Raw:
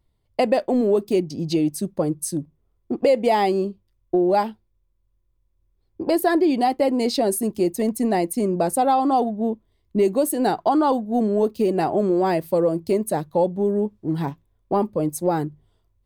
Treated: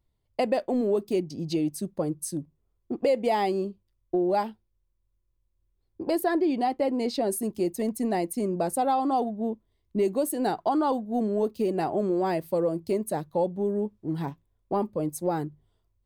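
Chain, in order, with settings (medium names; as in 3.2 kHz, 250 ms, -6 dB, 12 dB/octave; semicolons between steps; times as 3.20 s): 6.24–7.30 s: treble shelf 6 kHz -8.5 dB; trim -6 dB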